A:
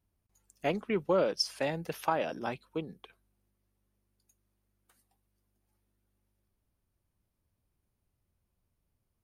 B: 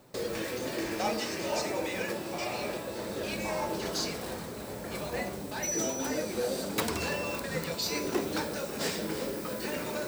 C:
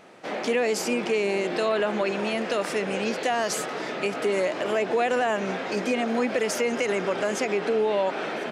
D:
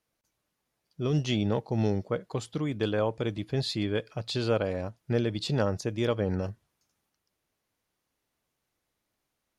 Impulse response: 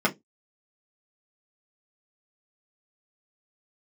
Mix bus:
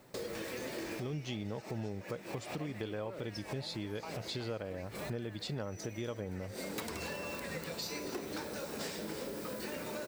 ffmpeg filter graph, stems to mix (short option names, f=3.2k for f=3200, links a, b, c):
-filter_complex "[0:a]adelay=1950,volume=-10.5dB[a];[1:a]volume=-2dB,asplit=2[b][c];[c]volume=-13.5dB[d];[2:a]bandpass=f=2k:t=q:w=3.3:csg=0,volume=-12.5dB[e];[3:a]volume=-1dB,asplit=2[f][g];[g]apad=whole_len=444245[h];[b][h]sidechaincompress=threshold=-46dB:ratio=8:attack=25:release=101[i];[d]aecho=0:1:270|540|810|1080|1350|1620|1890:1|0.51|0.26|0.133|0.0677|0.0345|0.0176[j];[a][i][e][f][j]amix=inputs=5:normalize=0,acompressor=threshold=-38dB:ratio=4"